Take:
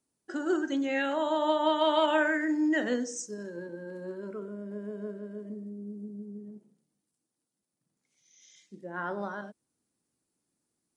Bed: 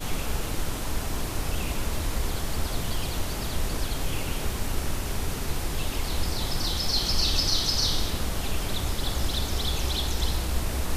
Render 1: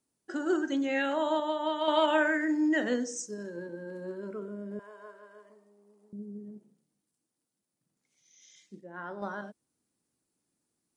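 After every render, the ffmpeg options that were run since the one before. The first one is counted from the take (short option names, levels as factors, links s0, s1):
-filter_complex "[0:a]asettb=1/sr,asplit=3[s0][s1][s2];[s0]atrim=end=4.794[s3];[s1]atrim=start=4.79:end=6.13,asetpts=PTS-STARTPTS,afade=t=in:d=0.004:c=qsin,afade=t=out:st=1.336:d=0.004:c=qsin,highpass=f=970:t=q:w=3.1[s4];[s2]atrim=start=6.126[s5];[s3][s4]acrossfade=d=0.004:c1=hsin:c2=qsin[s6];[s6][s5]acrossfade=d=0.004:c1=qsin:c2=hsin,asplit=5[s7][s8][s9][s10][s11];[s7]atrim=end=1.402[s12];[s8]atrim=start=1.398:end=1.882,asetpts=PTS-STARTPTS,volume=0.562[s13];[s9]atrim=start=1.878:end=8.802[s14];[s10]atrim=start=8.798:end=9.222,asetpts=PTS-STARTPTS,volume=0.501[s15];[s11]atrim=start=9.218[s16];[s12][s13]acrossfade=d=0.004:c1=hsin:c2=hsin[s17];[s17][s14]acrossfade=d=0.004:c1=hsin:c2=hsin[s18];[s18][s15]acrossfade=d=0.004:c1=hsin:c2=hsin[s19];[s19][s16]acrossfade=d=0.004:c1=hsin:c2=hsin"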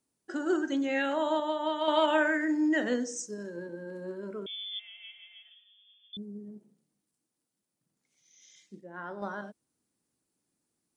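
-filter_complex "[0:a]asettb=1/sr,asplit=3[s0][s1][s2];[s0]atrim=end=4.464[s3];[s1]atrim=start=4.46:end=6.17,asetpts=PTS-STARTPTS,afade=t=in:d=0.004:c=qsin,afade=t=out:st=1.706:d=0.004:c=qsin,lowpass=f=3100:t=q:w=0.5098,lowpass=f=3100:t=q:w=0.6013,lowpass=f=3100:t=q:w=0.9,lowpass=f=3100:t=q:w=2.563,afreqshift=-3700[s4];[s2]atrim=start=6.166[s5];[s3][s4]acrossfade=d=0.004:c1=hsin:c2=qsin[s6];[s6][s5]acrossfade=d=0.004:c1=qsin:c2=hsin"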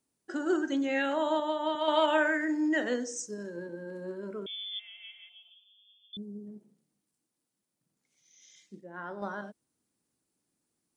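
-filter_complex "[0:a]asettb=1/sr,asplit=3[s0][s1][s2];[s0]atrim=end=1.754[s3];[s1]atrim=start=1.75:end=3.27,asetpts=PTS-STARTPTS,afade=t=in:d=0.004:c=qsin,afade=t=out:st=1.516:d=0.004:c=qsin,highpass=260[s4];[s2]atrim=start=3.266[s5];[s3][s4]acrossfade=d=0.004:c1=hsin:c2=qsin[s6];[s6][s5]acrossfade=d=0.004:c1=qsin:c2=hsin,asettb=1/sr,asplit=3[s7][s8][s9];[s7]atrim=end=5.294[s10];[s8]atrim=start=5.29:end=6.47,asetpts=PTS-STARTPTS,afade=t=in:d=0.004:c=qsin,afade=t=out:st=1.176:d=0.004:c=qsin,asuperstop=centerf=1800:order=4:qfactor=1.1[s11];[s9]atrim=start=6.466[s12];[s10][s11]acrossfade=d=0.004:c1=hsin:c2=qsin[s13];[s13][s12]acrossfade=d=0.004:c1=qsin:c2=hsin"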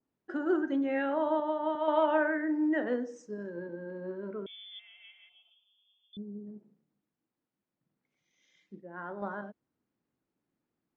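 -af "lowpass=2100,adynamicequalizer=threshold=0.00708:dfrequency=1600:dqfactor=0.7:tfrequency=1600:tqfactor=0.7:attack=5:release=100:ratio=0.375:range=3.5:mode=cutabove:tftype=highshelf"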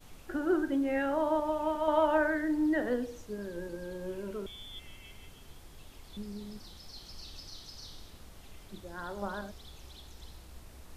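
-filter_complex "[1:a]volume=0.0708[s0];[0:a][s0]amix=inputs=2:normalize=0"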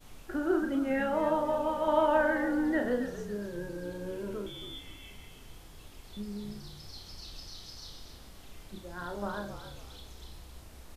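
-filter_complex "[0:a]asplit=2[s0][s1];[s1]adelay=34,volume=0.501[s2];[s0][s2]amix=inputs=2:normalize=0,asplit=5[s3][s4][s5][s6][s7];[s4]adelay=274,afreqshift=-59,volume=0.282[s8];[s5]adelay=548,afreqshift=-118,volume=0.0955[s9];[s6]adelay=822,afreqshift=-177,volume=0.0327[s10];[s7]adelay=1096,afreqshift=-236,volume=0.0111[s11];[s3][s8][s9][s10][s11]amix=inputs=5:normalize=0"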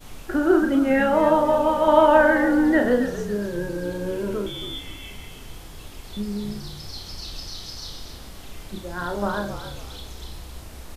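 -af "volume=3.35"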